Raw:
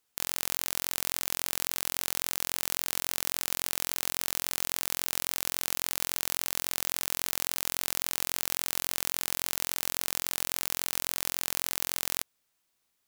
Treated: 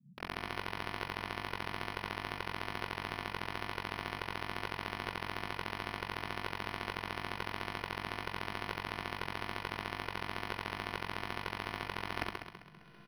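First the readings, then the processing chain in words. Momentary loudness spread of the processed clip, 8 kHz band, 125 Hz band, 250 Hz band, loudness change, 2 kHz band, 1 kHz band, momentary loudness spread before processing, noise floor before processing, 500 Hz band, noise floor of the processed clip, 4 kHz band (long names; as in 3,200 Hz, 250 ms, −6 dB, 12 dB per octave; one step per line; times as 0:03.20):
1 LU, −28.0 dB, +4.5 dB, +2.5 dB, −10.0 dB, −0.5 dB, +3.0 dB, 0 LU, −77 dBFS, +1.0 dB, −55 dBFS, −9.0 dB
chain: samples sorted by size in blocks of 256 samples
EQ curve with evenly spaced ripples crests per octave 0.79, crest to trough 9 dB
reversed playback
downward compressor 16 to 1, threshold −41 dBFS, peak gain reduction 19 dB
reversed playback
comb filter 2.9 ms, depth 84%
log-companded quantiser 6 bits
parametric band 240 Hz +13.5 dB 0.62 octaves
flutter between parallel walls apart 11.3 metres, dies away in 1.2 s
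upward compression, threshold −52 dBFS
notch filter 2,300 Hz, Q 9.3
noise in a band 130–210 Hz −67 dBFS
linearly interpolated sample-rate reduction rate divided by 6×
level +6.5 dB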